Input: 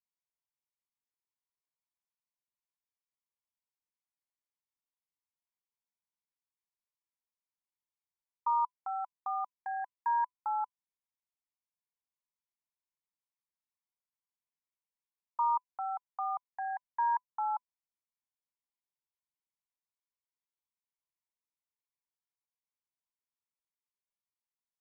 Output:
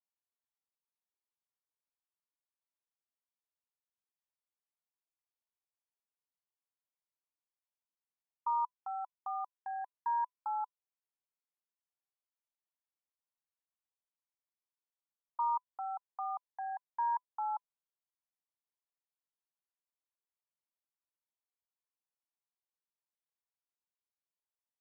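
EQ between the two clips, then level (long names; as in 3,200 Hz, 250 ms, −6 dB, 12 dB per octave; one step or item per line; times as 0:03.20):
high-pass filter 650 Hz
low-pass filter 1,400 Hz
tilt shelving filter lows +3.5 dB
−1.5 dB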